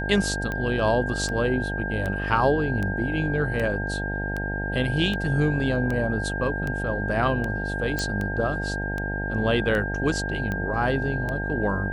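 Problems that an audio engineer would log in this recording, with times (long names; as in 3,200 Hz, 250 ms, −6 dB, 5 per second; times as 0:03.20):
mains buzz 50 Hz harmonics 18 −30 dBFS
scratch tick 78 rpm −17 dBFS
whistle 1,600 Hz −30 dBFS
0:07.99: click −12 dBFS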